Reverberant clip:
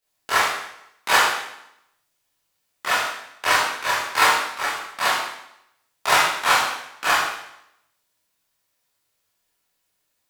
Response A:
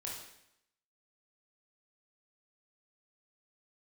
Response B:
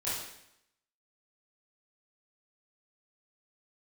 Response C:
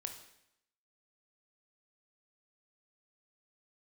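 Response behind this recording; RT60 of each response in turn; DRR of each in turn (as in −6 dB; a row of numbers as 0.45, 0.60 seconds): B; 0.80, 0.80, 0.80 seconds; −4.0, −11.5, 4.5 decibels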